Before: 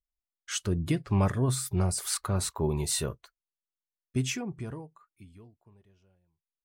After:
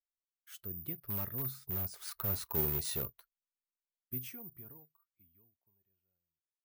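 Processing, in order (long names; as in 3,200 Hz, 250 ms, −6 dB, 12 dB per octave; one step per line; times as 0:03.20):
source passing by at 0:02.70, 8 m/s, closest 3.7 metres
high-shelf EQ 6,800 Hz −8 dB
bad sample-rate conversion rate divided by 3×, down filtered, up zero stuff
in parallel at −8 dB: wrap-around overflow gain 18.5 dB
on the sum: level −9 dB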